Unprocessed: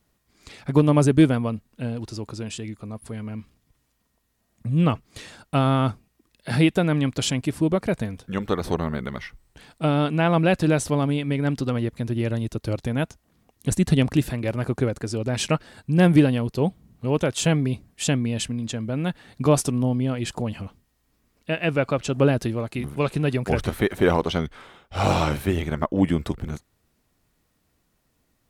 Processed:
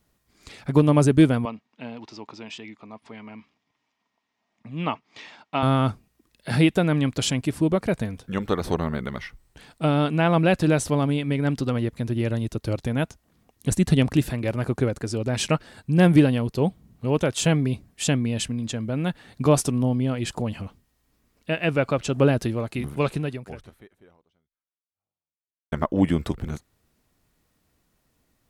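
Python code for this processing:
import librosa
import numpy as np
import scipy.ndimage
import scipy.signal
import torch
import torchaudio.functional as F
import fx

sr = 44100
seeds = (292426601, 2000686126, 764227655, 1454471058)

y = fx.cabinet(x, sr, low_hz=310.0, low_slope=12, high_hz=5200.0, hz=(360.0, 510.0, 910.0, 1500.0, 2200.0, 4300.0), db=(-5, -8, 5, -5, 4, -5), at=(1.45, 5.63))
y = fx.edit(y, sr, fx.fade_out_span(start_s=23.11, length_s=2.61, curve='exp'), tone=tone)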